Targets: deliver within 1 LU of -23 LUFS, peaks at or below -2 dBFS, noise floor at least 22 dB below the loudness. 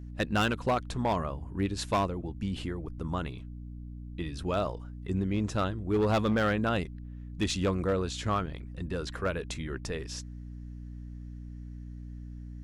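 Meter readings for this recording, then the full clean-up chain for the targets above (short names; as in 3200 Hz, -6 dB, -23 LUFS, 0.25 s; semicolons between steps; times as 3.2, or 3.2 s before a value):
clipped 0.8%; flat tops at -21.0 dBFS; hum 60 Hz; harmonics up to 300 Hz; hum level -39 dBFS; loudness -31.5 LUFS; peak -21.0 dBFS; loudness target -23.0 LUFS
-> clip repair -21 dBFS; de-hum 60 Hz, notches 5; gain +8.5 dB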